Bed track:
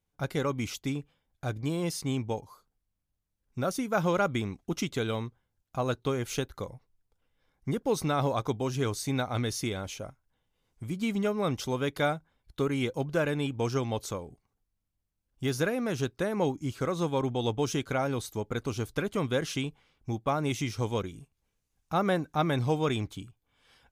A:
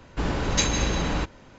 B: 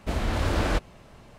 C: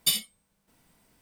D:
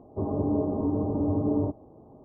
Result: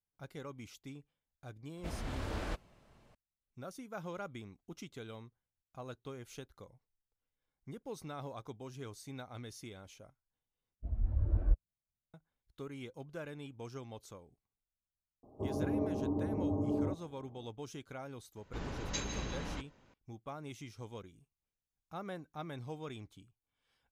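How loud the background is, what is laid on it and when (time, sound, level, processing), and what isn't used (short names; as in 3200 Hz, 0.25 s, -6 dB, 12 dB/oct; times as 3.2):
bed track -16.5 dB
1.77 add B -14 dB
10.76 replace with B -6.5 dB + spectral expander 2.5:1
15.23 add D -8 dB
18.36 add A -15.5 dB
not used: C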